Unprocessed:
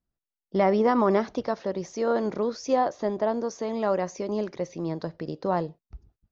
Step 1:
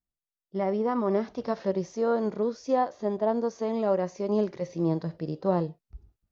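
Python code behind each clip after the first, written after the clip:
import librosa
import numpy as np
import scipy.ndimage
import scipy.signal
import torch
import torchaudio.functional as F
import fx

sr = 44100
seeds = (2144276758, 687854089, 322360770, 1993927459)

y = fx.hpss(x, sr, part='percussive', gain_db=-13)
y = fx.rider(y, sr, range_db=5, speed_s=0.5)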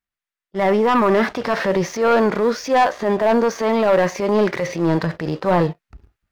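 y = fx.peak_eq(x, sr, hz=1800.0, db=14.5, octaves=2.0)
y = fx.transient(y, sr, attack_db=-7, sustain_db=4)
y = fx.leveller(y, sr, passes=2)
y = y * 10.0 ** (2.0 / 20.0)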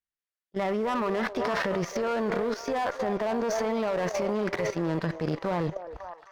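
y = fx.echo_stepped(x, sr, ms=268, hz=570.0, octaves=0.7, feedback_pct=70, wet_db=-8.0)
y = fx.cheby_harmonics(y, sr, harmonics=(6,), levels_db=(-24,), full_scale_db=-6.0)
y = fx.level_steps(y, sr, step_db=12)
y = y * 10.0 ** (-3.5 / 20.0)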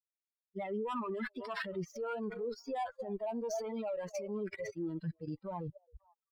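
y = fx.bin_expand(x, sr, power=3.0)
y = y * 10.0 ** (-4.0 / 20.0)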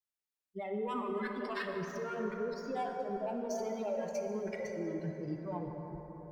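y = fx.rev_plate(x, sr, seeds[0], rt60_s=4.9, hf_ratio=0.4, predelay_ms=0, drr_db=2.0)
y = y * 10.0 ** (-1.0 / 20.0)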